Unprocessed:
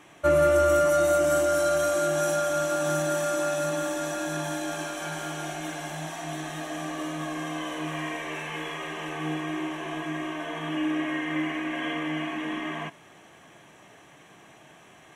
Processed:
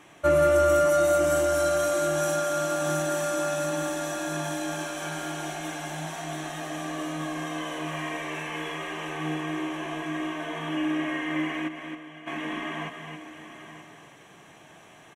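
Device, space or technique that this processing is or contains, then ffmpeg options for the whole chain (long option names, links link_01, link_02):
ducked delay: -filter_complex "[0:a]aecho=1:1:932:0.224,asplit=3[link_01][link_02][link_03];[link_01]afade=type=out:start_time=11.67:duration=0.02[link_04];[link_02]agate=range=-33dB:threshold=-20dB:ratio=3:detection=peak,afade=type=in:start_time=11.67:duration=0.02,afade=type=out:start_time=12.26:duration=0.02[link_05];[link_03]afade=type=in:start_time=12.26:duration=0.02[link_06];[link_04][link_05][link_06]amix=inputs=3:normalize=0,asplit=3[link_07][link_08][link_09];[link_08]adelay=269,volume=-6.5dB[link_10];[link_09]apad=whole_len=721106[link_11];[link_10][link_11]sidechaincompress=threshold=-37dB:ratio=8:attack=5.2:release=172[link_12];[link_07][link_12]amix=inputs=2:normalize=0"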